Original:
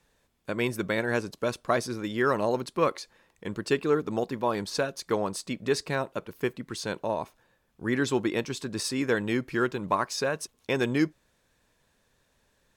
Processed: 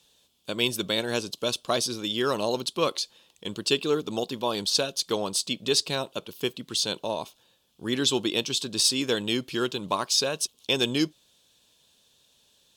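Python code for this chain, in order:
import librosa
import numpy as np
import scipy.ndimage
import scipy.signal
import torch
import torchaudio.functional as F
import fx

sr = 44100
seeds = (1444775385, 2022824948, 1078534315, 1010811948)

y = fx.highpass(x, sr, hz=120.0, slope=6)
y = fx.high_shelf_res(y, sr, hz=2500.0, db=8.5, q=3.0)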